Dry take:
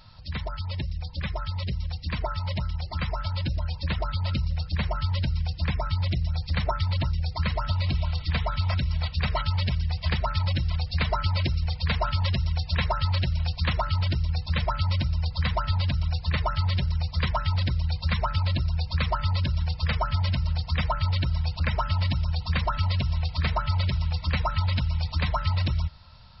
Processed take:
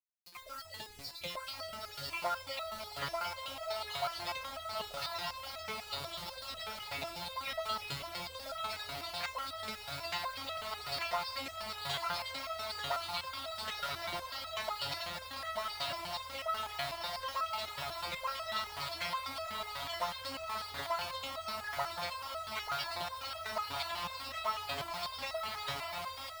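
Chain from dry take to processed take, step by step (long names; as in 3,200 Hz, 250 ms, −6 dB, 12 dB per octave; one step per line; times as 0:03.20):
time-frequency cells dropped at random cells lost 37%
dynamic equaliser 490 Hz, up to −3 dB, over −42 dBFS, Q 1.1
feedback delay with all-pass diffusion 1,332 ms, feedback 62%, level −3.5 dB
automatic gain control gain up to 15 dB
mains-hum notches 60/120/180/240 Hz
soft clipping −13 dBFS, distortion −12 dB
high-pass filter 84 Hz 12 dB per octave
low shelf with overshoot 370 Hz −13 dB, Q 1.5
bit reduction 6 bits
step-sequenced resonator 8.1 Hz 140–650 Hz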